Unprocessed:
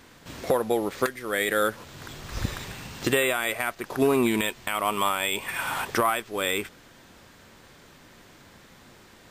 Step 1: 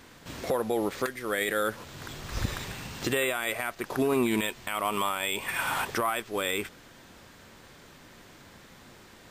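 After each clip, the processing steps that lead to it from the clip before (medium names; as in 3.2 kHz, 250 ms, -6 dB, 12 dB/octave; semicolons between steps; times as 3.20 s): peak limiter -17.5 dBFS, peak gain reduction 6.5 dB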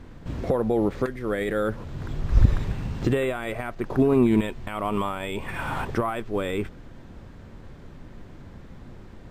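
tilt EQ -4 dB/octave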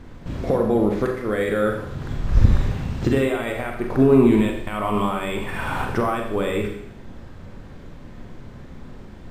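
Schroeder reverb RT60 0.74 s, combs from 30 ms, DRR 2 dB; trim +2 dB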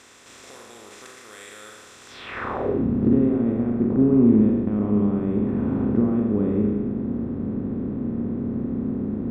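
spectral levelling over time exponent 0.4; band-pass sweep 6.8 kHz -> 220 Hz, 2.07–2.86 s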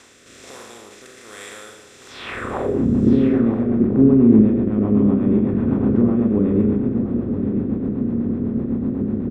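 rotary cabinet horn 1.2 Hz, later 8 Hz, at 2.17 s; delay 969 ms -10 dB; trim +5.5 dB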